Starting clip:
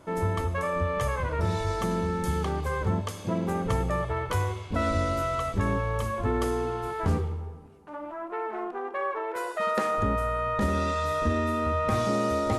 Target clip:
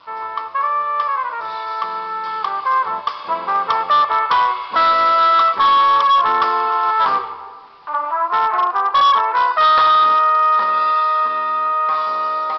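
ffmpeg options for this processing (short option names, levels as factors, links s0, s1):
-af "highpass=f=1100:t=q:w=4.9,equalizer=f=1800:w=0.47:g=-5.5,dynaudnorm=f=290:g=21:m=3.55,acrusher=bits=8:mix=0:aa=0.000001,aresample=11025,asoftclip=type=hard:threshold=0.15,aresample=44100,volume=2.11"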